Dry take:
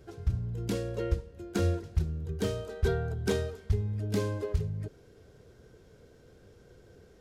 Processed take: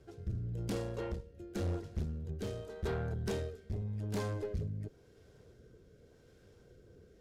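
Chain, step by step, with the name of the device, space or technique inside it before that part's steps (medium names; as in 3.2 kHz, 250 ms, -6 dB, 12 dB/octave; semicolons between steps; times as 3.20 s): overdriven rotary cabinet (valve stage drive 30 dB, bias 0.55; rotary cabinet horn 0.9 Hz)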